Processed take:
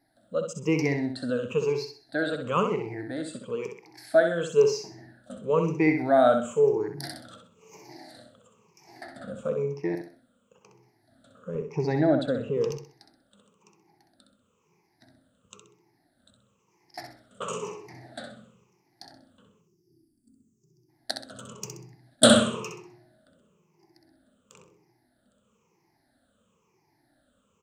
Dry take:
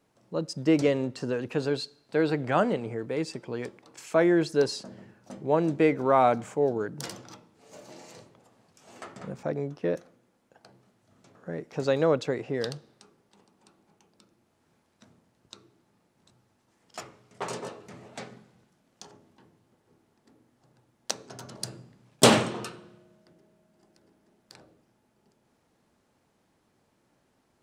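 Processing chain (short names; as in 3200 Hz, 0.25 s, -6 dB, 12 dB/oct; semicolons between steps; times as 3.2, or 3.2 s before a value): moving spectral ripple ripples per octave 0.77, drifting -1 Hz, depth 22 dB; 11.55–12.71 tilt -2 dB/oct; 19.62–20.89 spectral gain 410–4500 Hz -29 dB; on a send: feedback echo 64 ms, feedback 32%, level -6.5 dB; on the sum: gain -5.5 dB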